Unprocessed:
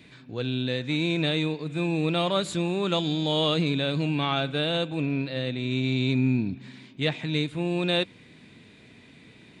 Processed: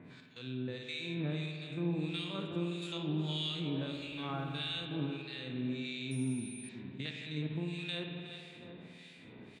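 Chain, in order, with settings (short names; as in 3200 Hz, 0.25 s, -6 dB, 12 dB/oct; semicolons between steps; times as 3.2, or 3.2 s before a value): stepped spectrum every 50 ms; compressor 1.5:1, threshold -49 dBFS, peak gain reduction 10.5 dB; feedback echo 0.367 s, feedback 43%, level -11 dB; harmonic tremolo 1.6 Hz, depth 100%, crossover 1600 Hz; 3.9–4.85 added noise brown -59 dBFS; HPF 97 Hz; reverb RT60 2.0 s, pre-delay 52 ms, DRR 4 dB; dynamic EQ 630 Hz, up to -7 dB, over -54 dBFS, Q 0.98; 6.11–6.69 pulse-width modulation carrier 9300 Hz; gain +2.5 dB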